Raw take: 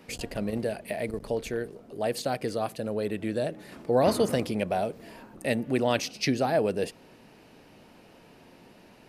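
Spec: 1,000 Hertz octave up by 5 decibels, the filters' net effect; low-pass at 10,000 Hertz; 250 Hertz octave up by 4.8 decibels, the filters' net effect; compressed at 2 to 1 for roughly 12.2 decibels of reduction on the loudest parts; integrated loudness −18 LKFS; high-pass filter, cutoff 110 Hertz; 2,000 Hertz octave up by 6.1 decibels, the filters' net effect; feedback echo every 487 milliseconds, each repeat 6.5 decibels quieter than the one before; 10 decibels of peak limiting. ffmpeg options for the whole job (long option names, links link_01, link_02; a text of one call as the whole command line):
ffmpeg -i in.wav -af "highpass=110,lowpass=10000,equalizer=frequency=250:width_type=o:gain=5.5,equalizer=frequency=1000:width_type=o:gain=6,equalizer=frequency=2000:width_type=o:gain=6,acompressor=threshold=-38dB:ratio=2,alimiter=level_in=4dB:limit=-24dB:level=0:latency=1,volume=-4dB,aecho=1:1:487|974|1461|1948|2435|2922:0.473|0.222|0.105|0.0491|0.0231|0.0109,volume=21dB" out.wav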